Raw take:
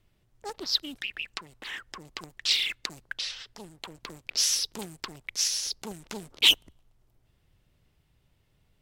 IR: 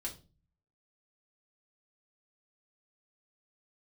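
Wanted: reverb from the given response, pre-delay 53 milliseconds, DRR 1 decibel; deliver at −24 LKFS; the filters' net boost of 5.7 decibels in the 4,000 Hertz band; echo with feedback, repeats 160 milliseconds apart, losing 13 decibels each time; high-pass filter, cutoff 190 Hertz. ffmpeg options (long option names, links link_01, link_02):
-filter_complex "[0:a]highpass=190,equalizer=frequency=4000:width_type=o:gain=7.5,aecho=1:1:160|320|480:0.224|0.0493|0.0108,asplit=2[link_01][link_02];[1:a]atrim=start_sample=2205,adelay=53[link_03];[link_02][link_03]afir=irnorm=-1:irlink=0,volume=0dB[link_04];[link_01][link_04]amix=inputs=2:normalize=0,volume=-4.5dB"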